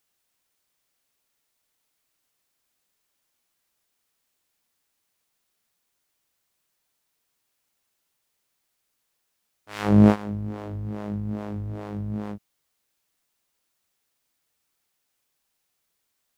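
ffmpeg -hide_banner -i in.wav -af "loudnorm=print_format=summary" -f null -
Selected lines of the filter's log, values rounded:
Input Integrated:    -24.8 LUFS
Input True Peak:      -2.3 dBTP
Input LRA:            10.5 LU
Input Threshold:     -35.4 LUFS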